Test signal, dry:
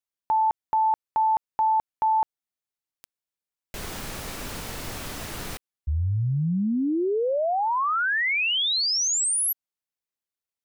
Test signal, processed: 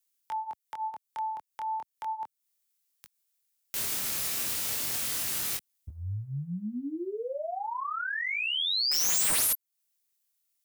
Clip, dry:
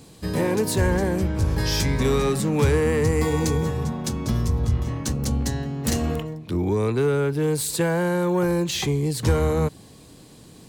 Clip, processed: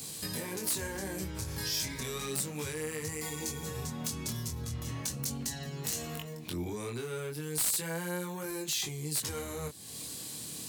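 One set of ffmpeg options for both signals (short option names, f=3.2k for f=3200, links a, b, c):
-filter_complex "[0:a]highpass=82,acrossover=split=290|1500[a][b][c];[c]acontrast=54[d];[a][b][d]amix=inputs=3:normalize=0,alimiter=limit=-14dB:level=0:latency=1:release=45,acompressor=threshold=-30dB:ratio=8:attack=0.68:release=338:knee=1:detection=rms,flanger=delay=19.5:depth=7.2:speed=0.34,crystalizer=i=2.5:c=0,aeval=exprs='(mod(11.2*val(0)+1,2)-1)/11.2':c=same"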